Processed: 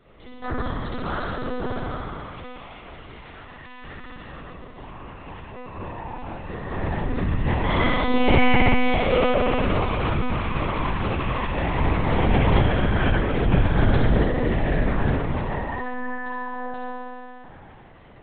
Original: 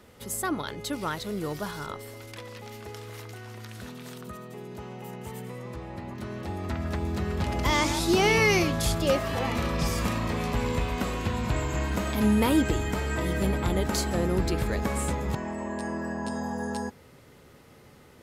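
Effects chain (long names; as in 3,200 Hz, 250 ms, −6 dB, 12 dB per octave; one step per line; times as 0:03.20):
0:01.09–0:01.59: low-shelf EQ 100 Hz −8 dB
spring reverb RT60 2.6 s, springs 30 ms, chirp 50 ms, DRR −8.5 dB
one-pitch LPC vocoder at 8 kHz 250 Hz
level −3.5 dB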